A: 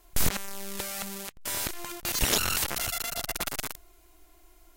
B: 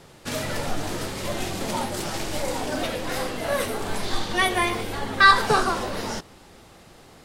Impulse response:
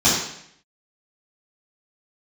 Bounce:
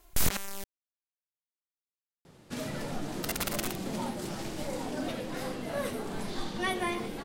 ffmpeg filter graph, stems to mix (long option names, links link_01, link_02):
-filter_complex "[0:a]volume=-1.5dB,asplit=3[link_01][link_02][link_03];[link_01]atrim=end=0.64,asetpts=PTS-STARTPTS,afade=type=out:start_time=0.636:duration=0.004:curve=hsin[link_04];[link_02]atrim=start=0.64:end=3.22,asetpts=PTS-STARTPTS,volume=0[link_05];[link_03]atrim=start=3.22,asetpts=PTS-STARTPTS,afade=type=in:duration=0.004:curve=hsin[link_06];[link_04][link_05][link_06]concat=n=3:v=0:a=1[link_07];[1:a]equalizer=frequency=180:width=0.57:gain=9,bandreject=frequency=50:width_type=h:width=6,bandreject=frequency=100:width_type=h:width=6,bandreject=frequency=150:width_type=h:width=6,adelay=2250,volume=-11dB[link_08];[link_07][link_08]amix=inputs=2:normalize=0"